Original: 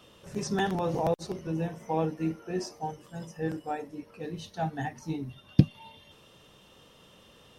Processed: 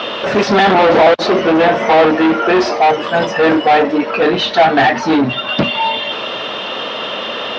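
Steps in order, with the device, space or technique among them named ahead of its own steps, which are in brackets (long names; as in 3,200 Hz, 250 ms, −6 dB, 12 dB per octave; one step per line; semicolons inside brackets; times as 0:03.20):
overdrive pedal into a guitar cabinet (mid-hump overdrive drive 44 dB, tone 6,200 Hz, clips at −3.5 dBFS; loudspeaker in its box 78–4,000 Hz, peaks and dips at 96 Hz −8 dB, 160 Hz −10 dB, 230 Hz +4 dB, 640 Hz +6 dB, 1,400 Hz +3 dB)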